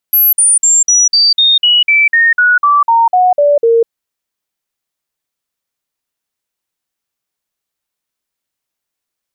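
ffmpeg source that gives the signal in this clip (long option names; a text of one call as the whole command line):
ffmpeg -f lavfi -i "aevalsrc='0.531*clip(min(mod(t,0.25),0.2-mod(t,0.25))/0.005,0,1)*sin(2*PI*11700*pow(2,-floor(t/0.25)/3)*mod(t,0.25))':duration=3.75:sample_rate=44100" out.wav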